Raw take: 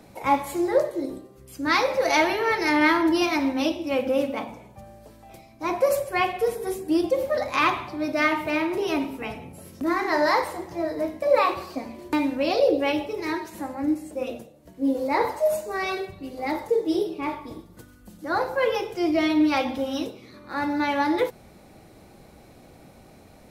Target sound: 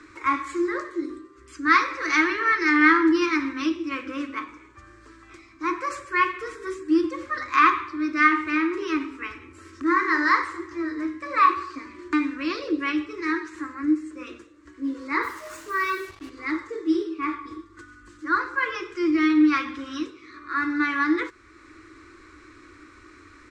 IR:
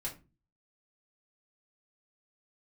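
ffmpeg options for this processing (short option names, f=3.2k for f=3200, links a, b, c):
-filter_complex "[0:a]firequalizer=gain_entry='entry(100,0);entry(160,-29);entry(310,11);entry(490,-10);entry(750,-22);entry(1100,14);entry(1800,13);entry(2900,2);entry(7700,3);entry(12000,-27)':delay=0.05:min_phase=1,asplit=2[a][b];[b]acompressor=threshold=-43dB:ratio=6,volume=0dB[c];[a][c]amix=inputs=2:normalize=0,asplit=3[d][e][f];[d]afade=t=out:st=15.22:d=0.02[g];[e]acrusher=bits=5:mix=0:aa=0.5,afade=t=in:st=15.22:d=0.02,afade=t=out:st=16.29:d=0.02[h];[f]afade=t=in:st=16.29:d=0.02[i];[g][h][i]amix=inputs=3:normalize=0,volume=-7dB"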